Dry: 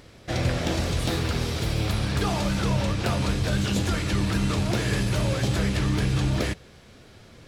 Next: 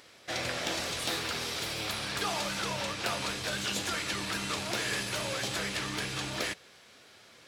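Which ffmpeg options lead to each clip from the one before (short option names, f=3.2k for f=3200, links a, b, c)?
-af "highpass=f=1.1k:p=1"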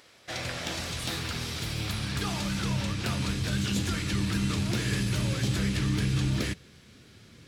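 -af "asubboost=boost=11:cutoff=210,volume=-1dB"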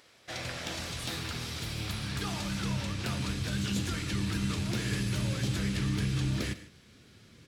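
-af "aecho=1:1:111|151:0.158|0.112,volume=-3.5dB"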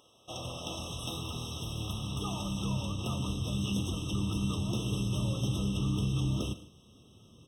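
-af "afftfilt=real='re*eq(mod(floor(b*sr/1024/1300),2),0)':imag='im*eq(mod(floor(b*sr/1024/1300),2),0)':win_size=1024:overlap=0.75"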